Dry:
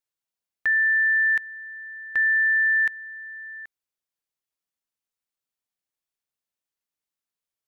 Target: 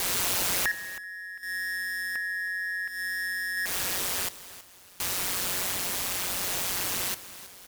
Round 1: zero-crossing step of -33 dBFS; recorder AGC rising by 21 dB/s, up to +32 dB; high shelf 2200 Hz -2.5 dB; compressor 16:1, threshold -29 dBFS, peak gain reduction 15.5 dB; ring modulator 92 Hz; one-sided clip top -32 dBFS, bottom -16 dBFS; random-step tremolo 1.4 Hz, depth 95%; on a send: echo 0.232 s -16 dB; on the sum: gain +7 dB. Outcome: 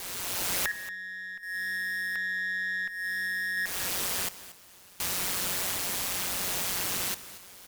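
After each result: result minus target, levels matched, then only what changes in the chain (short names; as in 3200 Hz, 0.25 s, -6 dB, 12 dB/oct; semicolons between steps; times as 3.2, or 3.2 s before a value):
zero-crossing step: distortion -9 dB; echo 90 ms early; one-sided clip: distortion +6 dB
change: zero-crossing step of -22.5 dBFS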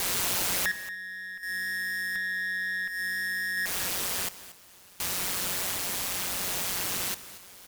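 echo 90 ms early; one-sided clip: distortion +5 dB
change: echo 0.322 s -16 dB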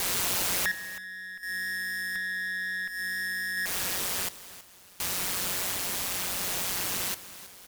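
one-sided clip: distortion +5 dB
change: one-sided clip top -22.5 dBFS, bottom -16 dBFS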